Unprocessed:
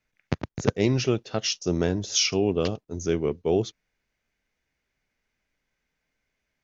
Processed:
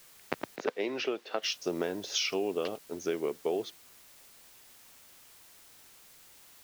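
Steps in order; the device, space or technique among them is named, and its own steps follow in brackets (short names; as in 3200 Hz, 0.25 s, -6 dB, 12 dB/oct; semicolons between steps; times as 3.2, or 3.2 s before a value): baby monitor (BPF 390–3900 Hz; compressor, threshold -29 dBFS, peak gain reduction 9.5 dB; white noise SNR 20 dB); 0.56–1.43 three-band isolator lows -19 dB, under 210 Hz, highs -13 dB, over 5100 Hz; gain +1.5 dB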